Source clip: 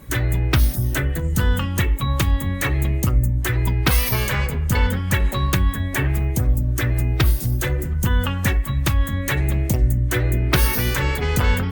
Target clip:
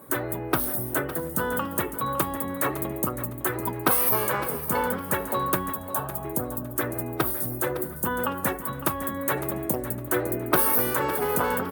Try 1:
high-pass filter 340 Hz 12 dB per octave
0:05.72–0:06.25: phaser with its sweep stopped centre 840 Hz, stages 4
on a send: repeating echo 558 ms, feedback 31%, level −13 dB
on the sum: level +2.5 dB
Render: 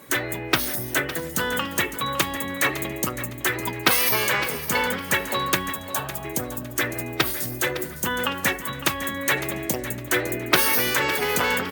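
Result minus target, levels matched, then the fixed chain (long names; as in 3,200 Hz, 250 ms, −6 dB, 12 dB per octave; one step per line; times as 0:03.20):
4,000 Hz band +11.5 dB
high-pass filter 340 Hz 12 dB per octave
flat-topped bell 3,600 Hz −14 dB 2.3 octaves
0:05.72–0:06.25: phaser with its sweep stopped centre 840 Hz, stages 4
on a send: repeating echo 558 ms, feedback 31%, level −13 dB
on the sum: level +2.5 dB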